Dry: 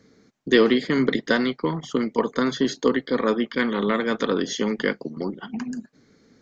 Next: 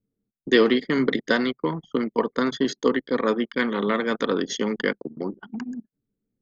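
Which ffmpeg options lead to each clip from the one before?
-af "lowshelf=f=120:g=-7,anlmdn=25.1"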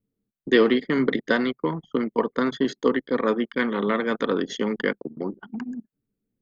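-af "equalizer=f=5.7k:t=o:w=1.1:g=-8"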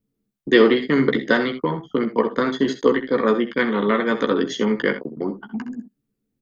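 -af "aecho=1:1:14|65|80:0.422|0.237|0.188,volume=3dB"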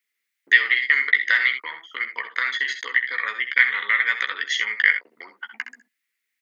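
-af "acompressor=threshold=-28dB:ratio=2.5,highpass=f=2k:t=q:w=6.1,volume=6.5dB"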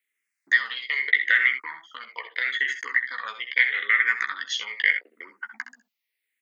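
-filter_complex "[0:a]asplit=2[a][b];[b]afreqshift=-0.79[c];[a][c]amix=inputs=2:normalize=1"

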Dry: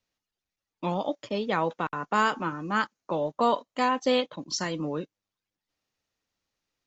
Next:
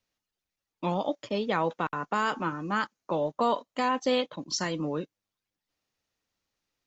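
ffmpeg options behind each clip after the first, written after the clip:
-af "alimiter=limit=-16dB:level=0:latency=1:release=20"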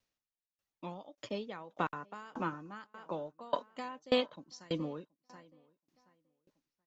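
-filter_complex "[0:a]asplit=2[a][b];[b]adelay=727,lowpass=f=2.8k:p=1,volume=-21dB,asplit=2[c][d];[d]adelay=727,lowpass=f=2.8k:p=1,volume=0.38,asplit=2[e][f];[f]adelay=727,lowpass=f=2.8k:p=1,volume=0.38[g];[a][c][e][g]amix=inputs=4:normalize=0,aeval=exprs='val(0)*pow(10,-28*if(lt(mod(1.7*n/s,1),2*abs(1.7)/1000),1-mod(1.7*n/s,1)/(2*abs(1.7)/1000),(mod(1.7*n/s,1)-2*abs(1.7)/1000)/(1-2*abs(1.7)/1000))/20)':c=same"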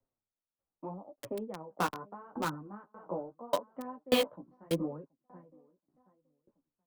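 -filter_complex "[0:a]flanger=delay=7.3:depth=9.2:regen=7:speed=0.79:shape=sinusoidal,acrossover=split=130|1200[a][b][c];[c]acrusher=bits=6:mix=0:aa=0.000001[d];[a][b][d]amix=inputs=3:normalize=0,volume=6dB"

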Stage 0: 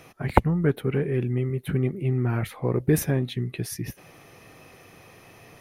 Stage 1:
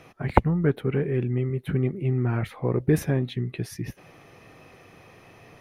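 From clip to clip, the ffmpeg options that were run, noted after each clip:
-af "highshelf=f=6.5k:g=-12"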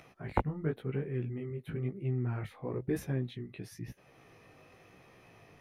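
-af "acompressor=mode=upward:threshold=-41dB:ratio=2.5,flanger=delay=15:depth=5.7:speed=0.98,volume=-8dB"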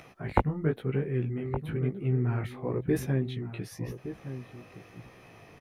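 -filter_complex "[0:a]asplit=2[a][b];[b]adelay=1166,volume=-11dB,highshelf=f=4k:g=-26.2[c];[a][c]amix=inputs=2:normalize=0,volume=5.5dB"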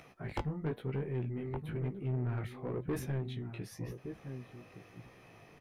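-af "aeval=exprs='(tanh(17.8*val(0)+0.2)-tanh(0.2))/17.8':c=same,flanger=delay=4.2:depth=3.5:regen=-82:speed=0.7:shape=triangular"

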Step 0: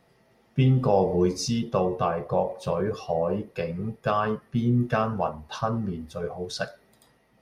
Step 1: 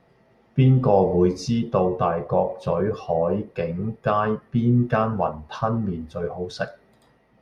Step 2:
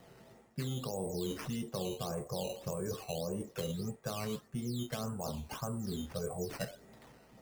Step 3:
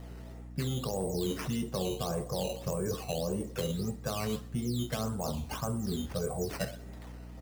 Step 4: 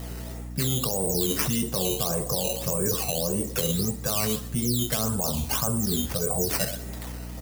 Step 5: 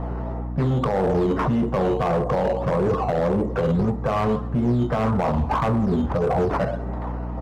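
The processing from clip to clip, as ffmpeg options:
-af "lowpass=f=2.1k:p=1,volume=4dB"
-filter_complex "[0:a]areverse,acompressor=threshold=-27dB:ratio=6,areverse,acrusher=samples=9:mix=1:aa=0.000001:lfo=1:lforange=9:lforate=1.7,acrossover=split=430|2600[a][b][c];[a]acompressor=threshold=-39dB:ratio=4[d];[b]acompressor=threshold=-46dB:ratio=4[e];[c]acompressor=threshold=-45dB:ratio=4[f];[d][e][f]amix=inputs=3:normalize=0,volume=1dB"
-filter_complex "[0:a]asplit=2[a][b];[b]asoftclip=type=hard:threshold=-30dB,volume=-3.5dB[c];[a][c]amix=inputs=2:normalize=0,aeval=exprs='val(0)+0.00631*(sin(2*PI*60*n/s)+sin(2*PI*2*60*n/s)/2+sin(2*PI*3*60*n/s)/3+sin(2*PI*4*60*n/s)/4+sin(2*PI*5*60*n/s)/5)':c=same,aecho=1:1:64|128|192|256|320:0.1|0.06|0.036|0.0216|0.013"
-af "alimiter=level_in=4dB:limit=-24dB:level=0:latency=1:release=128,volume=-4dB,crystalizer=i=2.5:c=0,volume=9dB"
-af "lowpass=f=1k:t=q:w=2.2,asoftclip=type=hard:threshold=-24dB,volume=7.5dB"

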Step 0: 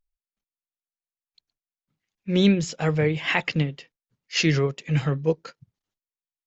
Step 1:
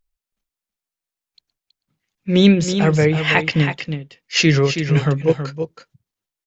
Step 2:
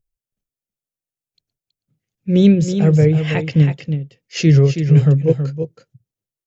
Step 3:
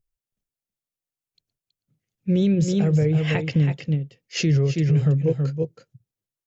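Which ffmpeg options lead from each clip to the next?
-af "aecho=1:1:324:0.376,volume=6.5dB"
-af "equalizer=f=125:t=o:w=1:g=12,equalizer=f=500:t=o:w=1:g=5,equalizer=f=1k:t=o:w=1:g=-9,equalizer=f=2k:t=o:w=1:g=-4,equalizer=f=4k:t=o:w=1:g=-5,volume=-3.5dB"
-af "alimiter=limit=-10.5dB:level=0:latency=1:release=122,volume=-2dB"

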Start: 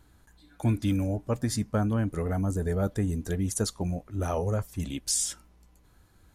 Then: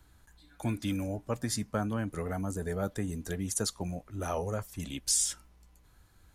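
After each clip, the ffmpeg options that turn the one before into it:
-filter_complex "[0:a]acrossover=split=140|1100|5600[a][b][c][d];[a]acompressor=threshold=-40dB:ratio=6[e];[e][b][c][d]amix=inputs=4:normalize=0,equalizer=f=300:t=o:w=2.7:g=-5"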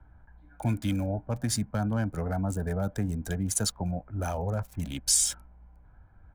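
-filter_complex "[0:a]aecho=1:1:1.3:0.45,acrossover=split=230|1700[a][b][c];[b]alimiter=level_in=5.5dB:limit=-24dB:level=0:latency=1:release=41,volume=-5.5dB[d];[c]aeval=exprs='sgn(val(0))*max(abs(val(0))-0.00398,0)':c=same[e];[a][d][e]amix=inputs=3:normalize=0,volume=4dB"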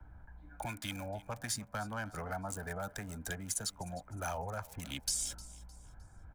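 -filter_complex "[0:a]acrossover=split=690[a][b];[a]alimiter=level_in=4.5dB:limit=-24dB:level=0:latency=1:release=408,volume=-4.5dB[c];[c][b]amix=inputs=2:normalize=0,acrossover=split=250|660[d][e][f];[d]acompressor=threshold=-46dB:ratio=4[g];[e]acompressor=threshold=-53dB:ratio=4[h];[f]acompressor=threshold=-36dB:ratio=4[i];[g][h][i]amix=inputs=3:normalize=0,aecho=1:1:307|614|921:0.106|0.0392|0.0145,volume=1dB"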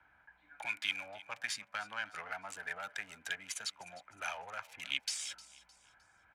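-filter_complex "[0:a]asplit=2[a][b];[b]aeval=exprs='clip(val(0),-1,0.00596)':c=same,volume=-8dB[c];[a][c]amix=inputs=2:normalize=0,bandpass=f=2.5k:t=q:w=2.2:csg=0,volume=8.5dB"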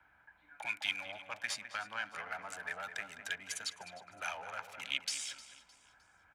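-filter_complex "[0:a]asplit=2[a][b];[b]adelay=207,lowpass=f=1.5k:p=1,volume=-7dB,asplit=2[c][d];[d]adelay=207,lowpass=f=1.5k:p=1,volume=0.46,asplit=2[e][f];[f]adelay=207,lowpass=f=1.5k:p=1,volume=0.46,asplit=2[g][h];[h]adelay=207,lowpass=f=1.5k:p=1,volume=0.46,asplit=2[i][j];[j]adelay=207,lowpass=f=1.5k:p=1,volume=0.46[k];[a][c][e][g][i][k]amix=inputs=6:normalize=0"

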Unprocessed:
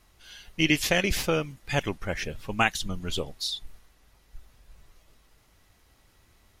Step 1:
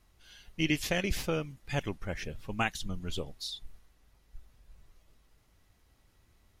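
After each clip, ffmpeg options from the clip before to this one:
-af "lowshelf=f=340:g=5,volume=-8dB"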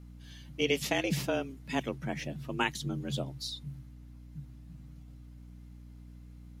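-af "afreqshift=130,aeval=exprs='val(0)+0.00398*(sin(2*PI*60*n/s)+sin(2*PI*2*60*n/s)/2+sin(2*PI*3*60*n/s)/3+sin(2*PI*4*60*n/s)/4+sin(2*PI*5*60*n/s)/5)':c=same"

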